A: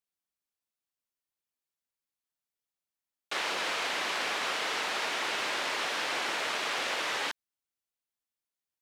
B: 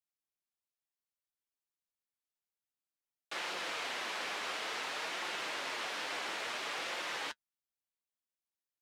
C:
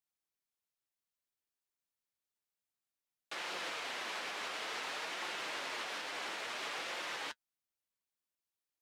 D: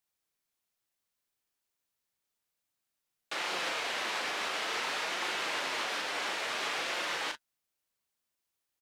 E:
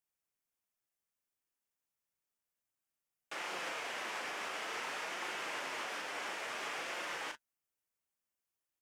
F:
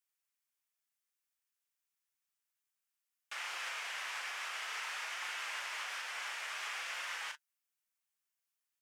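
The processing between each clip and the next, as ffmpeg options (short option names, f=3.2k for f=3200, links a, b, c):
-af "flanger=delay=5.6:depth=4.5:regen=-42:speed=0.57:shape=sinusoidal,volume=-3dB"
-af "alimiter=level_in=7dB:limit=-24dB:level=0:latency=1:release=143,volume=-7dB"
-filter_complex "[0:a]asplit=2[a][b];[b]adelay=37,volume=-7dB[c];[a][c]amix=inputs=2:normalize=0,volume=6dB"
-af "equalizer=f=4k:w=2.5:g=-8,volume=-5.5dB"
-af "highpass=1.2k,volume=1.5dB"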